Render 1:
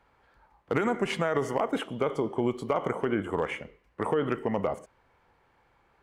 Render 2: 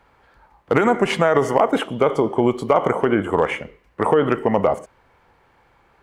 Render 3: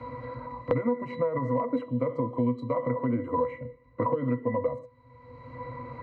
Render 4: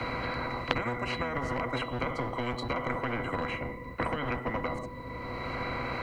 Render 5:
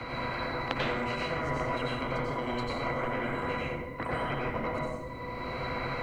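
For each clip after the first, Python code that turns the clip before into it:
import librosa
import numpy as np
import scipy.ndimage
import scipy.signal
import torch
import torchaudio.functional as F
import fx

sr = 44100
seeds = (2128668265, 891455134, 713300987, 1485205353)

y1 = fx.dynamic_eq(x, sr, hz=750.0, q=0.91, threshold_db=-37.0, ratio=4.0, max_db=4)
y1 = F.gain(torch.from_numpy(y1), 8.5).numpy()
y2 = fx.octave_resonator(y1, sr, note='B', decay_s=0.13)
y2 = fx.band_squash(y2, sr, depth_pct=100)
y3 = fx.octave_divider(y2, sr, octaves=1, level_db=-1.0)
y3 = fx.spectral_comp(y3, sr, ratio=4.0)
y3 = F.gain(torch.from_numpy(y3), 5.5).numpy()
y4 = fx.rev_plate(y3, sr, seeds[0], rt60_s=0.67, hf_ratio=0.95, predelay_ms=80, drr_db=-4.0)
y4 = F.gain(torch.from_numpy(y4), -5.0).numpy()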